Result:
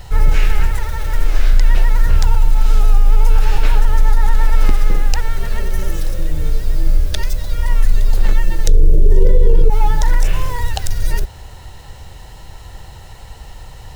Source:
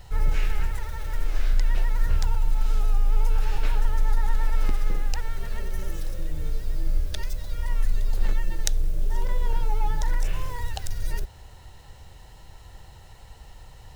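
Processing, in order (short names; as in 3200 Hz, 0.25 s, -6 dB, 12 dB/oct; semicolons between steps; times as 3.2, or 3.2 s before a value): 8.67–9.7 resonant low shelf 630 Hz +12.5 dB, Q 3; maximiser +12 dB; gain -1 dB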